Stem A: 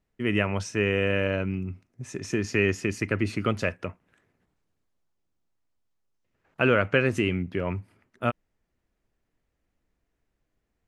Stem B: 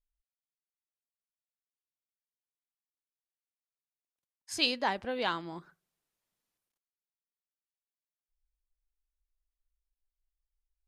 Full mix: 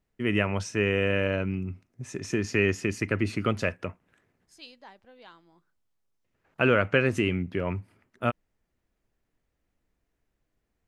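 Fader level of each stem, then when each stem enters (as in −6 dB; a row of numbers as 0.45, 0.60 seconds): −0.5, −19.0 decibels; 0.00, 0.00 seconds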